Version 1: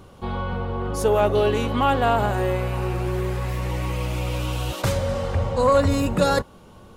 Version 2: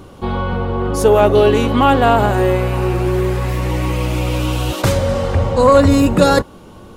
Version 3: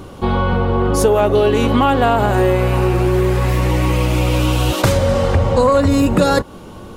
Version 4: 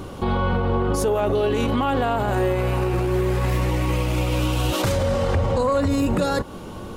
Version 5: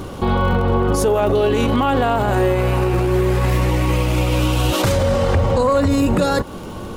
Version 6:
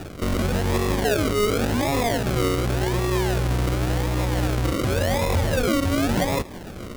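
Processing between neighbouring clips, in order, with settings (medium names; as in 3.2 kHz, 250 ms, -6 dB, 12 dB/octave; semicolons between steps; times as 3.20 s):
peaking EQ 310 Hz +5.5 dB 0.61 oct; trim +7 dB
compression, threshold -14 dBFS, peak gain reduction 8.5 dB; trim +4 dB
peak limiter -13.5 dBFS, peak gain reduction 11 dB
crackle 71 per s -34 dBFS; trim +4.5 dB
decimation with a swept rate 41×, swing 60% 0.9 Hz; trim -5.5 dB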